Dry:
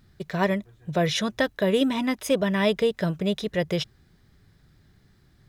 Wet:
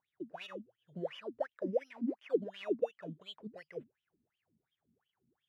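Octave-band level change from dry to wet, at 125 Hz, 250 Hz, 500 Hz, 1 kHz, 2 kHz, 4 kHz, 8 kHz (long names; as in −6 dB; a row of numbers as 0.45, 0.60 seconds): −22.0 dB, −16.5 dB, −12.5 dB, −18.5 dB, −22.0 dB, −21.0 dB, below −30 dB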